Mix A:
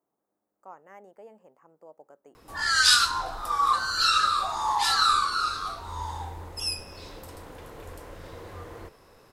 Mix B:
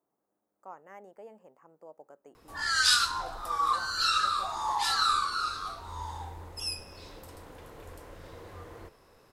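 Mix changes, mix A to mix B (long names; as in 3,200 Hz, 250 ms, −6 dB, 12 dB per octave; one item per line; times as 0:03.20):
background −5.5 dB
reverb: on, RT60 0.85 s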